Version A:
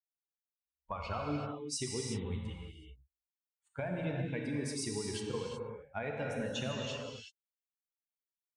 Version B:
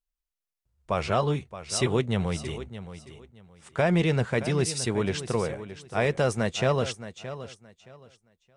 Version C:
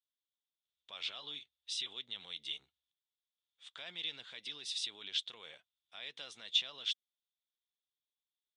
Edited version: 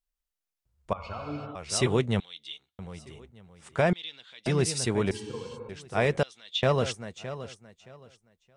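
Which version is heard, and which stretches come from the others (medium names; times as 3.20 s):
B
0.93–1.55 s: from A
2.20–2.79 s: from C
3.93–4.46 s: from C
5.11–5.69 s: from A
6.23–6.63 s: from C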